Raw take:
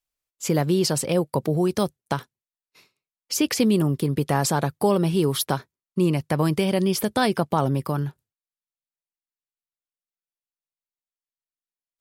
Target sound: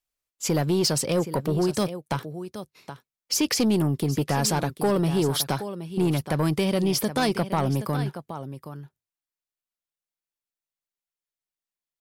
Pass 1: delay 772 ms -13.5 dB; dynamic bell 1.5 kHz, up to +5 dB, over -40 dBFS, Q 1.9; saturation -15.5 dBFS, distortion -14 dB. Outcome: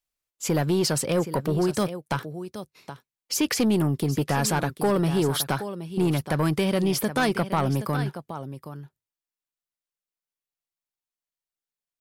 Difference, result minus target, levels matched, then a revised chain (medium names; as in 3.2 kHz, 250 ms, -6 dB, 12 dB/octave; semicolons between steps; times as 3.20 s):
2 kHz band +3.0 dB
delay 772 ms -13.5 dB; dynamic bell 5.2 kHz, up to +5 dB, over -40 dBFS, Q 1.9; saturation -15.5 dBFS, distortion -15 dB